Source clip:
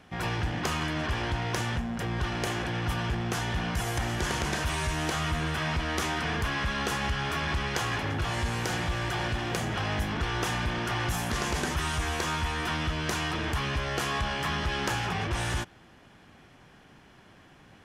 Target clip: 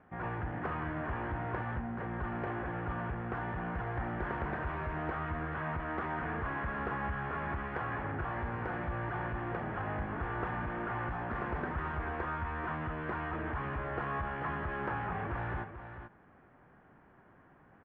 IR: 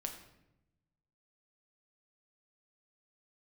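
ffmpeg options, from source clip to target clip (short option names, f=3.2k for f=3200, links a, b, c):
-af "lowpass=f=1.7k:w=0.5412,lowpass=f=1.7k:w=1.3066,lowshelf=f=270:g=-4.5,aecho=1:1:438:0.335,volume=-4dB"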